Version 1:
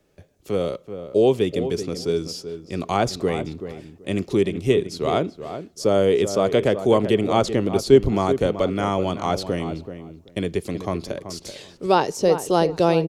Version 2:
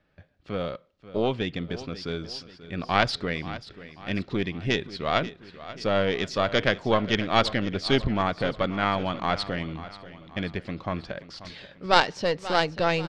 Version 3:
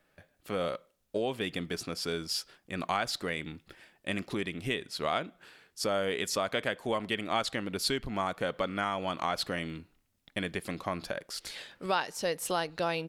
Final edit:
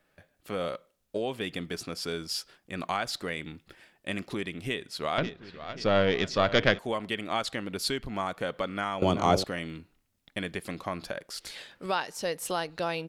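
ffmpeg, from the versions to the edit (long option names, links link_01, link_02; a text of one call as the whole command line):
ffmpeg -i take0.wav -i take1.wav -i take2.wav -filter_complex "[2:a]asplit=3[link_01][link_02][link_03];[link_01]atrim=end=5.182[link_04];[1:a]atrim=start=5.178:end=6.792[link_05];[link_02]atrim=start=6.788:end=9.022[link_06];[0:a]atrim=start=9.018:end=9.442[link_07];[link_03]atrim=start=9.438[link_08];[link_04][link_05]acrossfade=duration=0.004:curve1=hsin:curve2=hsin[link_09];[link_09][link_06]acrossfade=duration=0.004:curve1=hsin:curve2=hsin[link_10];[link_10][link_07]acrossfade=duration=0.004:curve1=hsin:curve2=hsin[link_11];[link_11][link_08]acrossfade=duration=0.004:curve1=hsin:curve2=hsin" out.wav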